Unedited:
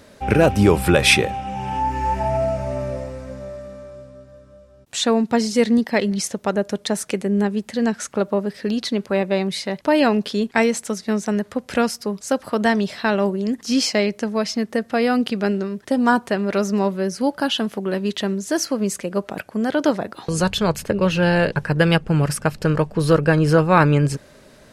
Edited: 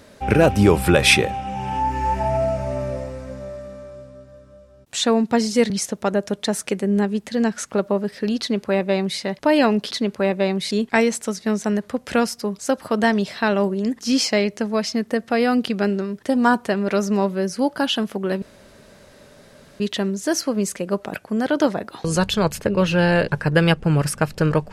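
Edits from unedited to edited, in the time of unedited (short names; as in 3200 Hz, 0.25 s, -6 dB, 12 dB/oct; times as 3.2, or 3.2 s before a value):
5.7–6.12 cut
8.82–9.62 copy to 10.33
18.04 insert room tone 1.38 s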